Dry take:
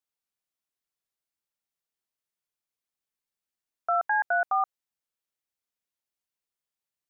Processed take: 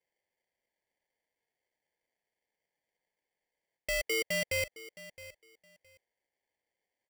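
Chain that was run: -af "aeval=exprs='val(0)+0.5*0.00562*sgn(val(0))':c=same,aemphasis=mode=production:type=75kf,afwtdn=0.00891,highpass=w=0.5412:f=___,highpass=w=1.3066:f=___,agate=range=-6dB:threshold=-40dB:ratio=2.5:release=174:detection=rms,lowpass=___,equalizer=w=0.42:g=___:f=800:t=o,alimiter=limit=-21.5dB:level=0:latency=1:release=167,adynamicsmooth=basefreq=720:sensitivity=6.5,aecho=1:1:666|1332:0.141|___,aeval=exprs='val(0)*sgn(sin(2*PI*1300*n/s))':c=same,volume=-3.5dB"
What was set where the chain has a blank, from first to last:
360, 360, 1.3k, 8.5, 0.0268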